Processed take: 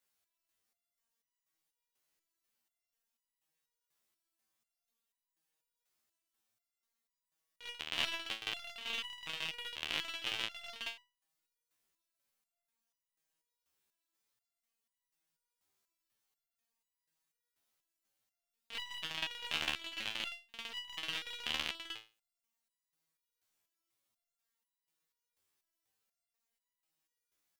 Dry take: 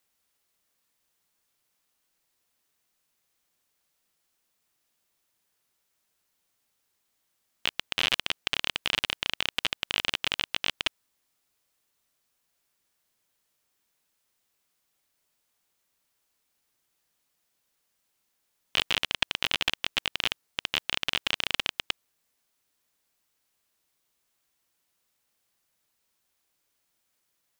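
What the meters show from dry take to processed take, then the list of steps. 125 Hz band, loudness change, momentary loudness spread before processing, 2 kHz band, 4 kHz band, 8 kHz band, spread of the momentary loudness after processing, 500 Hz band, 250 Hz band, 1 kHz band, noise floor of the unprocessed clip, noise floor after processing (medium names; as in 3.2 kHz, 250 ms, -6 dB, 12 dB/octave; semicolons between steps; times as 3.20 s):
-12.0 dB, -10.5 dB, 6 LU, -10.5 dB, -10.5 dB, -10.5 dB, 9 LU, -11.0 dB, -10.5 dB, -10.0 dB, -77 dBFS, under -85 dBFS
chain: reverse echo 49 ms -7.5 dB; resonator arpeggio 4.1 Hz 77–990 Hz; trim +1 dB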